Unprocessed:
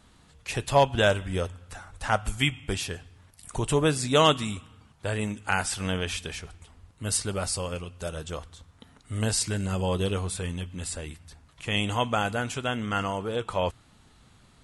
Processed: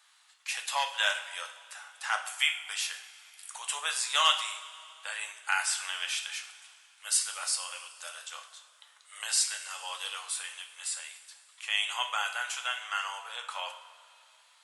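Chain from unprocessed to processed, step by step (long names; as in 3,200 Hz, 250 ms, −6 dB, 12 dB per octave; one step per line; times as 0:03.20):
Bessel high-pass filter 1,400 Hz, order 6
coupled-rooms reverb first 0.53 s, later 2.8 s, from −15 dB, DRR 4 dB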